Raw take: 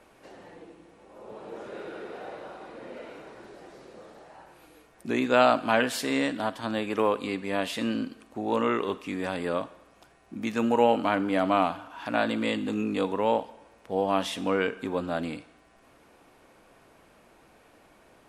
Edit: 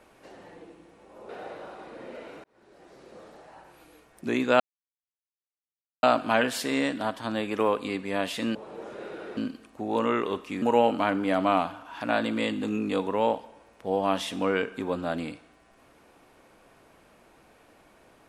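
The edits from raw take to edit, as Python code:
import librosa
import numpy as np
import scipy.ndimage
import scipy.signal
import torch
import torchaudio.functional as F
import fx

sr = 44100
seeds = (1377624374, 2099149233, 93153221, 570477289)

y = fx.edit(x, sr, fx.move(start_s=1.29, length_s=0.82, to_s=7.94),
    fx.fade_in_span(start_s=3.26, length_s=0.75),
    fx.insert_silence(at_s=5.42, length_s=1.43),
    fx.cut(start_s=9.19, length_s=1.48), tone=tone)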